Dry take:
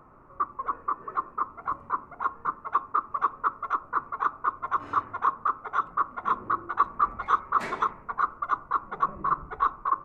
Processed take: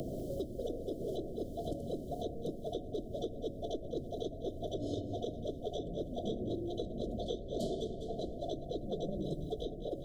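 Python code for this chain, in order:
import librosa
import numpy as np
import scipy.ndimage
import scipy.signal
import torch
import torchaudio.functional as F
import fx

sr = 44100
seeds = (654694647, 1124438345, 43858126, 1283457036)

p1 = fx.brickwall_bandstop(x, sr, low_hz=720.0, high_hz=3000.0)
p2 = p1 + fx.echo_feedback(p1, sr, ms=200, feedback_pct=46, wet_db=-14.0, dry=0)
p3 = fx.band_squash(p2, sr, depth_pct=100)
y = p3 * 10.0 ** (6.5 / 20.0)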